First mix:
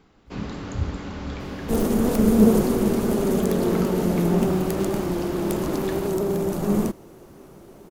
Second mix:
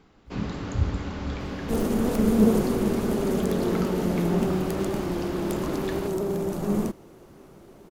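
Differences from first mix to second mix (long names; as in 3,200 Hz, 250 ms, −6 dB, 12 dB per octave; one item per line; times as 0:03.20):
speech: send on
second sound −3.5 dB
master: add high-shelf EQ 11,000 Hz −4.5 dB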